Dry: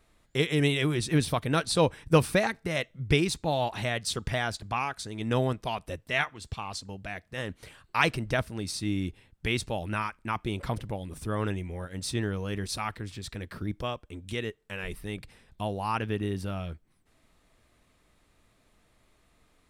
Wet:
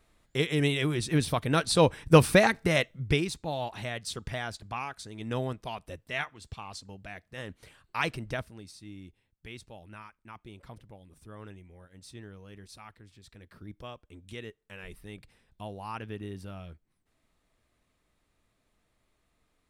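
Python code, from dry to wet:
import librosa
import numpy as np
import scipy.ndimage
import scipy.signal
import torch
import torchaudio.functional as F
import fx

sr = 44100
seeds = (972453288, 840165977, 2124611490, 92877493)

y = fx.gain(x, sr, db=fx.line((1.12, -1.5), (2.68, 6.0), (3.32, -5.5), (8.32, -5.5), (8.75, -16.0), (13.15, -16.0), (14.09, -8.5)))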